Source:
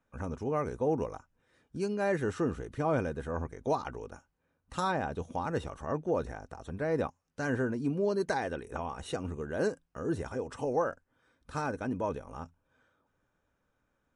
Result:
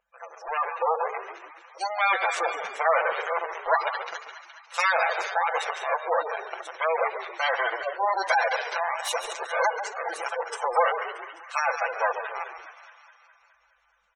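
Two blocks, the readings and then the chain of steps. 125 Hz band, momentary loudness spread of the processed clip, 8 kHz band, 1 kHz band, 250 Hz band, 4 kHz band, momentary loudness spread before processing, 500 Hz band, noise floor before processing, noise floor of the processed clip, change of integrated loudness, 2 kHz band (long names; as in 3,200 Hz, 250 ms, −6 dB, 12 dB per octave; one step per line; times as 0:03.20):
below −40 dB, 14 LU, +10.5 dB, +12.0 dB, below −20 dB, +13.5 dB, 11 LU, +3.5 dB, −79 dBFS, −64 dBFS, +7.0 dB, +14.0 dB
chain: lower of the sound and its delayed copy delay 5.9 ms
mains hum 50 Hz, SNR 13 dB
inverse Chebyshev high-pass filter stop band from 290 Hz, stop band 40 dB
high-shelf EQ 2,400 Hz +7 dB
automatic gain control gain up to 8 dB
on a send: delay with a high-pass on its return 209 ms, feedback 63%, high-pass 1,500 Hz, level −6.5 dB
on the sum: soft clipping −12 dBFS, distortion −27 dB
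in parallel at −4 dB: bit reduction 5 bits
on the sum: echo with shifted repeats 138 ms, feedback 40%, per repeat −44 Hz, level −10 dB
gate on every frequency bin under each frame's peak −15 dB strong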